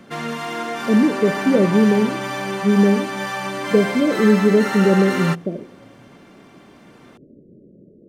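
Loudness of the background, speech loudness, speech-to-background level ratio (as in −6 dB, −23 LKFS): −25.0 LKFS, −17.5 LKFS, 7.5 dB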